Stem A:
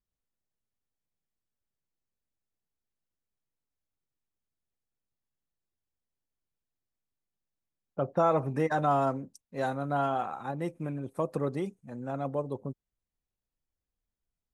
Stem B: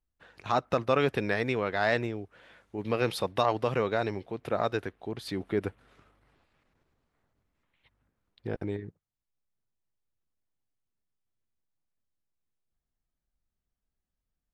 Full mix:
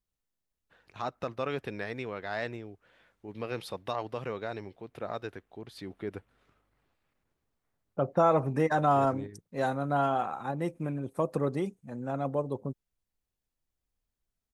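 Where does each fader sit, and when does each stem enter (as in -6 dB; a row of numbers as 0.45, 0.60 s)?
+1.5, -8.0 dB; 0.00, 0.50 s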